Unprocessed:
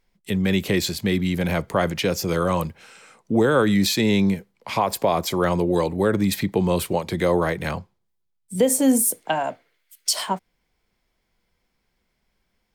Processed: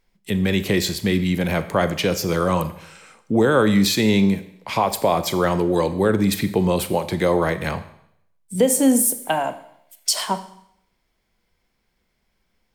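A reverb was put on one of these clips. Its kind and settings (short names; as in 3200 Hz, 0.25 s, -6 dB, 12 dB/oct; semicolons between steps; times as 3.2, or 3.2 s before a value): Schroeder reverb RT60 0.72 s, combs from 29 ms, DRR 11.5 dB; gain +1.5 dB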